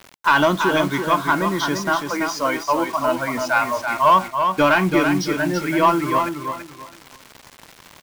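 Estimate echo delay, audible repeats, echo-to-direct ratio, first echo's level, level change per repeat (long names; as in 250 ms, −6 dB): 333 ms, 3, −5.5 dB, −6.0 dB, −12.0 dB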